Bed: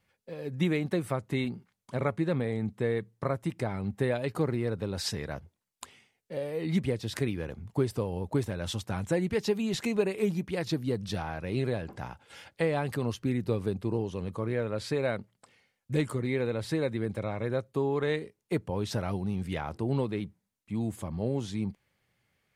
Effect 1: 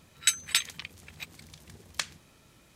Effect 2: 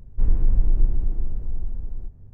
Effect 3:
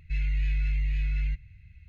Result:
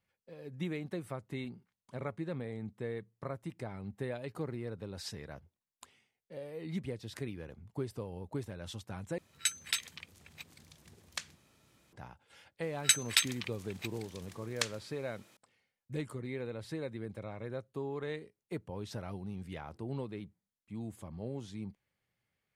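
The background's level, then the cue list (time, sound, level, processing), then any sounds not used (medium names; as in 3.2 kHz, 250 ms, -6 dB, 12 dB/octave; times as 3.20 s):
bed -10 dB
9.18 s: replace with 1 -7.5 dB + high-pass 57 Hz
12.62 s: add 1 -1.5 dB + high-pass 250 Hz
not used: 2, 3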